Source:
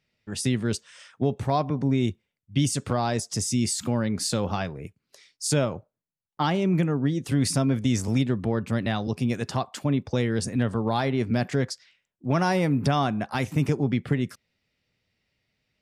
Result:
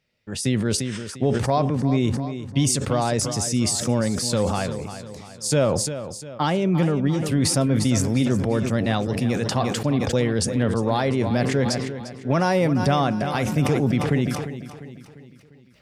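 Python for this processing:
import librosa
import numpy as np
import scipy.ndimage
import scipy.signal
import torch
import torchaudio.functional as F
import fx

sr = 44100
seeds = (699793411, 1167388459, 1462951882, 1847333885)

p1 = fx.peak_eq(x, sr, hz=530.0, db=5.5, octaves=0.36)
p2 = p1 + fx.echo_feedback(p1, sr, ms=349, feedback_pct=49, wet_db=-12.0, dry=0)
p3 = fx.sustainer(p2, sr, db_per_s=34.0)
y = F.gain(torch.from_numpy(p3), 1.5).numpy()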